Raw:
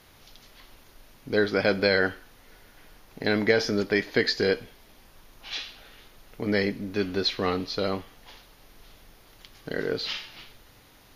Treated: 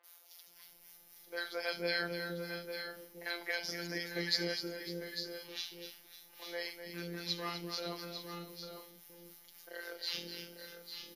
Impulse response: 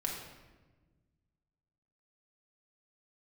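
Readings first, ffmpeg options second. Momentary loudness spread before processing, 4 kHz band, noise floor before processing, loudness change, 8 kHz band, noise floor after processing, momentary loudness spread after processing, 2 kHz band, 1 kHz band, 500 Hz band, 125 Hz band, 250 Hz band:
12 LU, -6.5 dB, -55 dBFS, -13.0 dB, -3.5 dB, -61 dBFS, 20 LU, -10.5 dB, -11.0 dB, -15.5 dB, -12.5 dB, -15.0 dB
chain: -filter_complex "[0:a]acrossover=split=400|2600[s0][s1][s2];[s2]adelay=40[s3];[s0]adelay=470[s4];[s4][s1][s3]amix=inputs=3:normalize=0,afftfilt=real='hypot(re,im)*cos(PI*b)':imag='0':win_size=1024:overlap=0.75,aemphasis=mode=production:type=bsi,acrossover=split=840[s5][s6];[s5]aeval=exprs='val(0)*(1-0.5/2+0.5/2*cos(2*PI*3.8*n/s))':c=same[s7];[s6]aeval=exprs='val(0)*(1-0.5/2-0.5/2*cos(2*PI*3.8*n/s))':c=same[s8];[s7][s8]amix=inputs=2:normalize=0,asplit=2[s9][s10];[s10]aecho=0:1:71|250|552|850|893:0.126|0.355|0.168|0.355|0.178[s11];[s9][s11]amix=inputs=2:normalize=0,volume=0.531"

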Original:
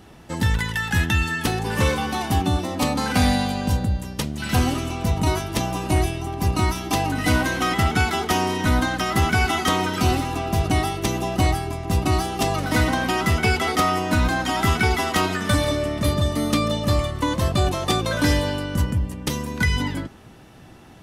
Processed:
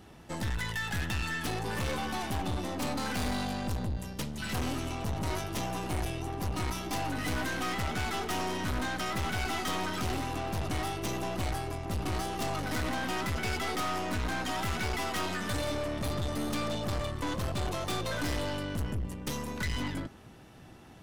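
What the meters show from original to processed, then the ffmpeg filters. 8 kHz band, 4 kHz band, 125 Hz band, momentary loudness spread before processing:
-10.0 dB, -10.0 dB, -13.0 dB, 5 LU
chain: -af "aeval=exprs='(tanh(20*val(0)+0.5)-tanh(0.5))/20':c=same,volume=0.631"

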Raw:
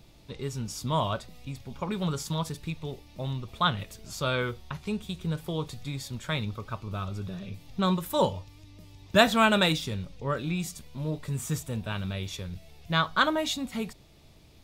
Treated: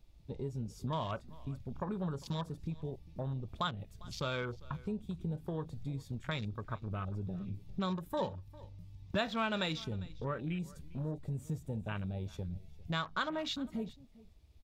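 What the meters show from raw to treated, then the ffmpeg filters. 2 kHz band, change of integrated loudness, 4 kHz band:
-11.5 dB, -9.5 dB, -11.5 dB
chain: -filter_complex "[0:a]afwtdn=0.0112,acompressor=threshold=0.0141:ratio=2.5,asplit=2[s0][s1];[s1]aecho=0:1:401:0.0841[s2];[s0][s2]amix=inputs=2:normalize=0"

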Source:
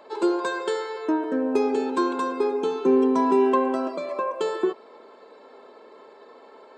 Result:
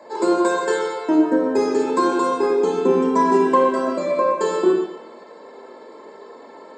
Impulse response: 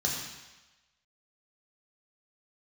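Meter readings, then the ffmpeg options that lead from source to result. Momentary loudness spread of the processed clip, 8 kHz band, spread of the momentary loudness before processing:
6 LU, no reading, 9 LU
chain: -filter_complex "[1:a]atrim=start_sample=2205,asetrate=52920,aresample=44100[s0];[0:a][s0]afir=irnorm=-1:irlink=0"

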